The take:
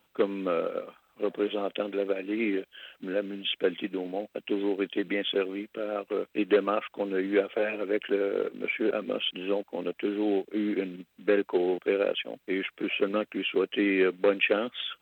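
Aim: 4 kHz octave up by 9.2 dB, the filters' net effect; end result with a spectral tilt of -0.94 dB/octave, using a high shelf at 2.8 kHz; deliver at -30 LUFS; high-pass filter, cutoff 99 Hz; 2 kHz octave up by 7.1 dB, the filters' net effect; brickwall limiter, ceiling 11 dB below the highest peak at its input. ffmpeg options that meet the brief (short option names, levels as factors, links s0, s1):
-af "highpass=99,equalizer=f=2000:t=o:g=3.5,highshelf=f=2800:g=7.5,equalizer=f=4000:t=o:g=5.5,volume=0.794,alimiter=limit=0.141:level=0:latency=1"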